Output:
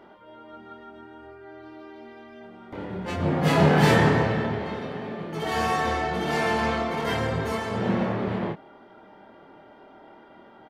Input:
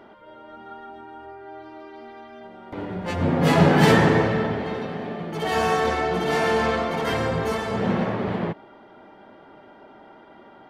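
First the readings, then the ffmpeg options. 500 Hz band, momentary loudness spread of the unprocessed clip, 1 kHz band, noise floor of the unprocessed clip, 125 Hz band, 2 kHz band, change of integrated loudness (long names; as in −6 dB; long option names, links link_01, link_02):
−3.5 dB, 24 LU, −2.0 dB, −49 dBFS, −1.5 dB, −2.0 dB, −2.5 dB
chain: -filter_complex "[0:a]asplit=2[link_01][link_02];[link_02]adelay=26,volume=-4dB[link_03];[link_01][link_03]amix=inputs=2:normalize=0,volume=-3.5dB"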